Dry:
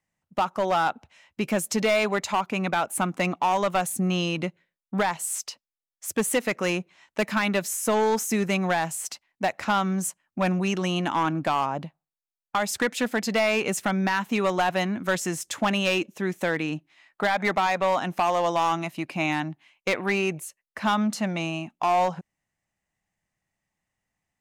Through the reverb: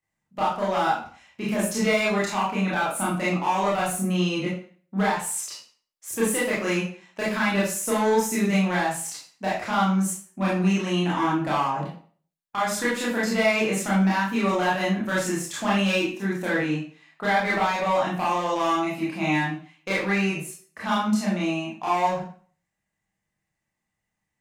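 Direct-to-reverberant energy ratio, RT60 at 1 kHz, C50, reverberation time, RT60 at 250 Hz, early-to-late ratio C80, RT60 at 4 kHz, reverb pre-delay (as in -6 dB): -8.0 dB, 0.45 s, 3.0 dB, 0.45 s, 0.40 s, 8.0 dB, 0.40 s, 23 ms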